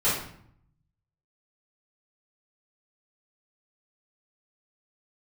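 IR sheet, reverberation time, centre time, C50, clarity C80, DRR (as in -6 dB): 0.65 s, 49 ms, 2.5 dB, 7.0 dB, -12.5 dB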